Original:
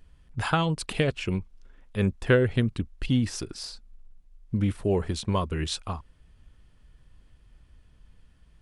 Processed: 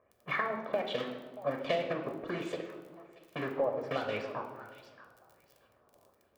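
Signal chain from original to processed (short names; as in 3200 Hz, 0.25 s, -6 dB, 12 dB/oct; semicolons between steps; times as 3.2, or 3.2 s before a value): block floating point 3-bit; speed mistake 33 rpm record played at 45 rpm; low-pass opened by the level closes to 1100 Hz, open at -23.5 dBFS; HPF 420 Hz 12 dB/oct; tilt shelf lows +6 dB, about 1200 Hz; thinning echo 0.629 s, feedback 31%, high-pass 960 Hz, level -18.5 dB; LFO low-pass sine 1.3 Hz 860–3400 Hz; compressor 5:1, threshold -26 dBFS, peak gain reduction 11 dB; crackle 21/s -45 dBFS; high shelf 9000 Hz +10 dB; reverb RT60 1.4 s, pre-delay 9 ms, DRR 4 dB; gain -6.5 dB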